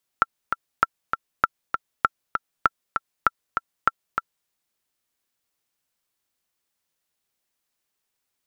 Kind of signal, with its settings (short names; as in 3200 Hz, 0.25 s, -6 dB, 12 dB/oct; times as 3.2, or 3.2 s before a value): metronome 197 bpm, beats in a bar 2, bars 7, 1350 Hz, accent 6 dB -3 dBFS